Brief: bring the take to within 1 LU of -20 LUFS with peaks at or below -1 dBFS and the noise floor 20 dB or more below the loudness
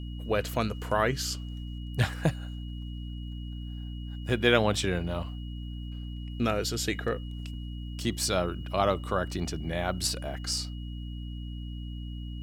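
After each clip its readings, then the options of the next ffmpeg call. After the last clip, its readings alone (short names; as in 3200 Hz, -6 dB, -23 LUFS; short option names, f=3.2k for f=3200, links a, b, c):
hum 60 Hz; harmonics up to 300 Hz; hum level -35 dBFS; steady tone 2900 Hz; tone level -51 dBFS; loudness -31.5 LUFS; peak -6.5 dBFS; loudness target -20.0 LUFS
-> -af "bandreject=f=60:t=h:w=6,bandreject=f=120:t=h:w=6,bandreject=f=180:t=h:w=6,bandreject=f=240:t=h:w=6,bandreject=f=300:t=h:w=6"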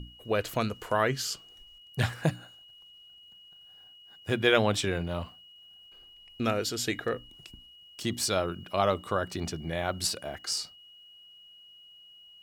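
hum none; steady tone 2900 Hz; tone level -51 dBFS
-> -af "bandreject=f=2.9k:w=30"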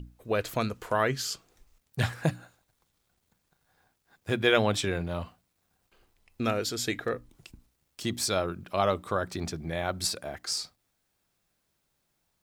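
steady tone none; loudness -30.0 LUFS; peak -7.5 dBFS; loudness target -20.0 LUFS
-> -af "volume=10dB,alimiter=limit=-1dB:level=0:latency=1"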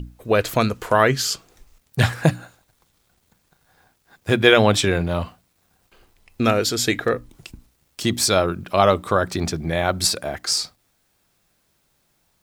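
loudness -20.0 LUFS; peak -1.0 dBFS; noise floor -67 dBFS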